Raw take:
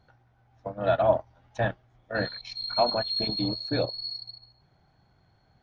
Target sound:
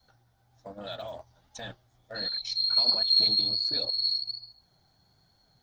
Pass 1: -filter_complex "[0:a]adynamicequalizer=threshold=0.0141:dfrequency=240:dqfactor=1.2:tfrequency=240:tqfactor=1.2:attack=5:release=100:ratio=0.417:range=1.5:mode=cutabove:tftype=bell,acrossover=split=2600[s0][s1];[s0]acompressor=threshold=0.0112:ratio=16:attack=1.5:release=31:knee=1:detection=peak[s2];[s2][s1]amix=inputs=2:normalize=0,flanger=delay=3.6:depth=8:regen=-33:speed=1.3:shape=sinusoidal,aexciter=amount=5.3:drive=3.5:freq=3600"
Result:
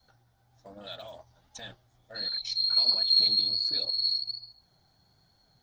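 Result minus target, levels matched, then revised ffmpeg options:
compression: peak gain reduction +6 dB
-filter_complex "[0:a]adynamicequalizer=threshold=0.0141:dfrequency=240:dqfactor=1.2:tfrequency=240:tqfactor=1.2:attack=5:release=100:ratio=0.417:range=1.5:mode=cutabove:tftype=bell,acrossover=split=2600[s0][s1];[s0]acompressor=threshold=0.0237:ratio=16:attack=1.5:release=31:knee=1:detection=peak[s2];[s2][s1]amix=inputs=2:normalize=0,flanger=delay=3.6:depth=8:regen=-33:speed=1.3:shape=sinusoidal,aexciter=amount=5.3:drive=3.5:freq=3600"

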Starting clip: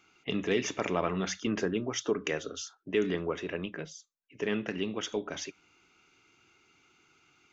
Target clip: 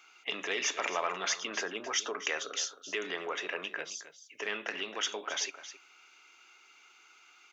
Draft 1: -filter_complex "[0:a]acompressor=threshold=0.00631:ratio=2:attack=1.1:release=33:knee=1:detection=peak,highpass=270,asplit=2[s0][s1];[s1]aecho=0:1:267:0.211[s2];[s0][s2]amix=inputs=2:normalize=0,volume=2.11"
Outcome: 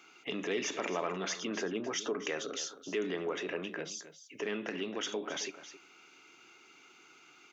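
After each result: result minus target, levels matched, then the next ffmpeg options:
250 Hz band +11.0 dB; compression: peak gain reduction +5.5 dB
-filter_complex "[0:a]acompressor=threshold=0.00631:ratio=2:attack=1.1:release=33:knee=1:detection=peak,highpass=760,asplit=2[s0][s1];[s1]aecho=0:1:267:0.211[s2];[s0][s2]amix=inputs=2:normalize=0,volume=2.11"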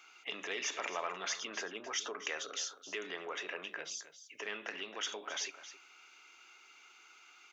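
compression: peak gain reduction +5.5 dB
-filter_complex "[0:a]acompressor=threshold=0.0237:ratio=2:attack=1.1:release=33:knee=1:detection=peak,highpass=760,asplit=2[s0][s1];[s1]aecho=0:1:267:0.211[s2];[s0][s2]amix=inputs=2:normalize=0,volume=2.11"

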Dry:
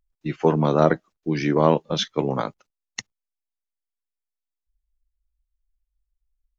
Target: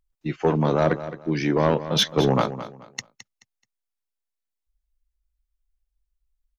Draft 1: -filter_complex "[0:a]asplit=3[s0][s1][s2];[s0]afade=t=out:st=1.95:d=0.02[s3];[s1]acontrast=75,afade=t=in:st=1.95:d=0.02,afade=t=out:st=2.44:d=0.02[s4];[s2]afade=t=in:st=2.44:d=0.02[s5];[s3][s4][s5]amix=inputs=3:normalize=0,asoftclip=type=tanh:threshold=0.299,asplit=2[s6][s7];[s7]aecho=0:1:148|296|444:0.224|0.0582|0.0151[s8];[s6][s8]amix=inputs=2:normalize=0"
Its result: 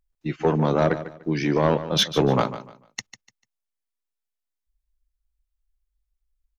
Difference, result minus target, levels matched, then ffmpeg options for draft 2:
echo 67 ms early
-filter_complex "[0:a]asplit=3[s0][s1][s2];[s0]afade=t=out:st=1.95:d=0.02[s3];[s1]acontrast=75,afade=t=in:st=1.95:d=0.02,afade=t=out:st=2.44:d=0.02[s4];[s2]afade=t=in:st=2.44:d=0.02[s5];[s3][s4][s5]amix=inputs=3:normalize=0,asoftclip=type=tanh:threshold=0.299,asplit=2[s6][s7];[s7]aecho=0:1:215|430|645:0.224|0.0582|0.0151[s8];[s6][s8]amix=inputs=2:normalize=0"

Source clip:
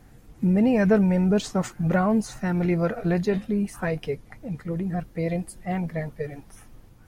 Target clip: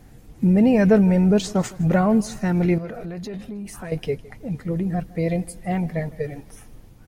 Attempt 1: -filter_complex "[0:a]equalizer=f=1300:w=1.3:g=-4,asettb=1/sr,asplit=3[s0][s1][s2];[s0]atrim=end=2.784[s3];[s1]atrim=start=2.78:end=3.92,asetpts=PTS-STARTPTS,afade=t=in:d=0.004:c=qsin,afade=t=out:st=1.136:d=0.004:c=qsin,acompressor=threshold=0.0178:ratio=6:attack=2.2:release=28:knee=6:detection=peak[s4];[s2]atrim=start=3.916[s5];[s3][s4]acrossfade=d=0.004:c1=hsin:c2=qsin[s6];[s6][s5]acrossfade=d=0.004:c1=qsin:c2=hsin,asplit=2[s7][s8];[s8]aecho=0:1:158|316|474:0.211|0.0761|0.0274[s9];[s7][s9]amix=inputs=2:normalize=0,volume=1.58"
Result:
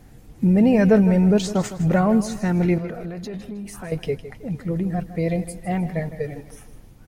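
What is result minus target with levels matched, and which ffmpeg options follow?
echo-to-direct +8 dB
-filter_complex "[0:a]equalizer=f=1300:w=1.3:g=-4,asettb=1/sr,asplit=3[s0][s1][s2];[s0]atrim=end=2.784[s3];[s1]atrim=start=2.78:end=3.92,asetpts=PTS-STARTPTS,afade=t=in:d=0.004:c=qsin,afade=t=out:st=1.136:d=0.004:c=qsin,acompressor=threshold=0.0178:ratio=6:attack=2.2:release=28:knee=6:detection=peak[s4];[s2]atrim=start=3.916[s5];[s3][s4]acrossfade=d=0.004:c1=hsin:c2=qsin[s6];[s6][s5]acrossfade=d=0.004:c1=qsin:c2=hsin,asplit=2[s7][s8];[s8]aecho=0:1:158|316|474:0.0841|0.0303|0.0109[s9];[s7][s9]amix=inputs=2:normalize=0,volume=1.58"

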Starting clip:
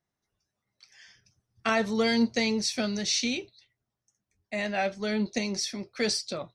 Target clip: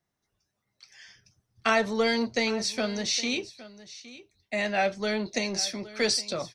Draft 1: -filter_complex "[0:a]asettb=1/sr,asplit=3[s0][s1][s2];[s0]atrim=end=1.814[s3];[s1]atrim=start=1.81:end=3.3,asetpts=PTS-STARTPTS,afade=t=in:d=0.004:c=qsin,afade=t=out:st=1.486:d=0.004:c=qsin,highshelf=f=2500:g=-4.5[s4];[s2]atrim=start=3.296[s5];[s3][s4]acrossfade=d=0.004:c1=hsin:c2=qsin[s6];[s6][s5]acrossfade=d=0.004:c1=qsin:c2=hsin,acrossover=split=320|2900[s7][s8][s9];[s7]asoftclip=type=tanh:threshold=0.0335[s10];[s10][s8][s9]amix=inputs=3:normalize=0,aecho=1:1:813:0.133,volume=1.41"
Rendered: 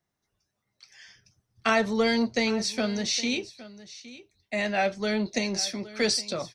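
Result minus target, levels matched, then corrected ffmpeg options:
saturation: distortion -5 dB
-filter_complex "[0:a]asettb=1/sr,asplit=3[s0][s1][s2];[s0]atrim=end=1.814[s3];[s1]atrim=start=1.81:end=3.3,asetpts=PTS-STARTPTS,afade=t=in:d=0.004:c=qsin,afade=t=out:st=1.486:d=0.004:c=qsin,highshelf=f=2500:g=-4.5[s4];[s2]atrim=start=3.296[s5];[s3][s4]acrossfade=d=0.004:c1=hsin:c2=qsin[s6];[s6][s5]acrossfade=d=0.004:c1=qsin:c2=hsin,acrossover=split=320|2900[s7][s8][s9];[s7]asoftclip=type=tanh:threshold=0.0141[s10];[s10][s8][s9]amix=inputs=3:normalize=0,aecho=1:1:813:0.133,volume=1.41"

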